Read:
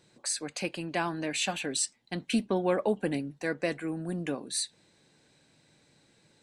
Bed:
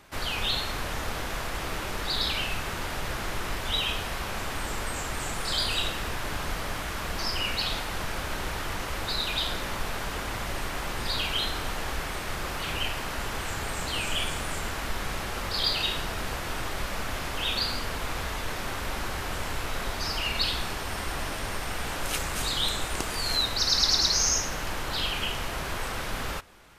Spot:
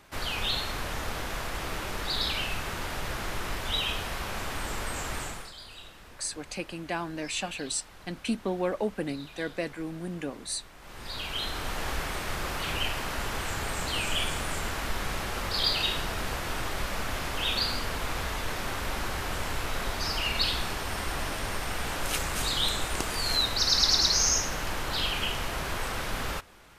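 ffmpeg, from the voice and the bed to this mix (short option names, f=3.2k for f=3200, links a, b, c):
-filter_complex "[0:a]adelay=5950,volume=-2dB[a];[1:a]volume=17dB,afade=t=out:st=5.16:d=0.36:silence=0.141254,afade=t=in:st=10.79:d=1.09:silence=0.11885[b];[a][b]amix=inputs=2:normalize=0"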